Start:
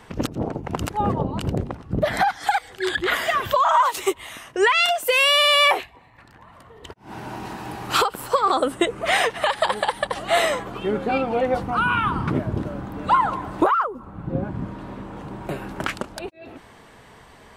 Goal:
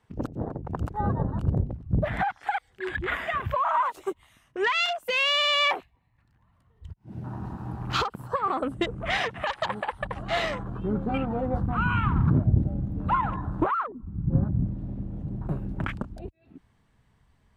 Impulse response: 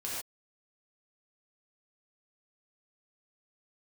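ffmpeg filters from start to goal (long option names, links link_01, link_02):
-af "afwtdn=0.0316,asubboost=boost=5.5:cutoff=180,volume=-6dB"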